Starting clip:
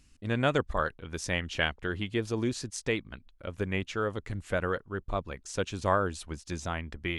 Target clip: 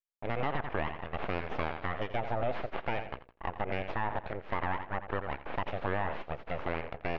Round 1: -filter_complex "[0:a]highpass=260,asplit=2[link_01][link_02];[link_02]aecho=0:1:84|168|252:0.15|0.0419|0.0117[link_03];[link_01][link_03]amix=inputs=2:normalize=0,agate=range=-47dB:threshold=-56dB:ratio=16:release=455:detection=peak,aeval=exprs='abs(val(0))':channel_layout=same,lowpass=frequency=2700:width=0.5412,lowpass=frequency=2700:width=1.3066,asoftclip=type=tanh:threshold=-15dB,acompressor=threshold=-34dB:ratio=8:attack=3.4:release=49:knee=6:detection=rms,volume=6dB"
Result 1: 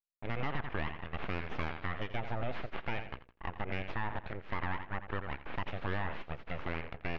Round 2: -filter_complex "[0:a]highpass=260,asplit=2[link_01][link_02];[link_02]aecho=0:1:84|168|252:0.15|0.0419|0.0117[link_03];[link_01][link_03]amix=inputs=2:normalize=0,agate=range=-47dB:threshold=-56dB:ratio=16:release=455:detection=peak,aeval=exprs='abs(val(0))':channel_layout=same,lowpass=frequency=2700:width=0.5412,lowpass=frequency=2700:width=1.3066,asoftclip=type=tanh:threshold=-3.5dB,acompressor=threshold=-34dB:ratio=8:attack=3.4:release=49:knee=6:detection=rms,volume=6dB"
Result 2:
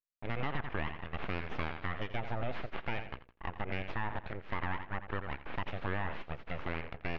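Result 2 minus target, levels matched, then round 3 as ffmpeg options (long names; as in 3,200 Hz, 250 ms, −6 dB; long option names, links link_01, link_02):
500 Hz band −3.5 dB
-filter_complex "[0:a]highpass=260,asplit=2[link_01][link_02];[link_02]aecho=0:1:84|168|252:0.15|0.0419|0.0117[link_03];[link_01][link_03]amix=inputs=2:normalize=0,agate=range=-47dB:threshold=-56dB:ratio=16:release=455:detection=peak,aeval=exprs='abs(val(0))':channel_layout=same,lowpass=frequency=2700:width=0.5412,lowpass=frequency=2700:width=1.3066,asoftclip=type=tanh:threshold=-3.5dB,acompressor=threshold=-34dB:ratio=8:attack=3.4:release=49:knee=6:detection=rms,equalizer=frequency=630:width_type=o:width=1.6:gain=8,volume=6dB"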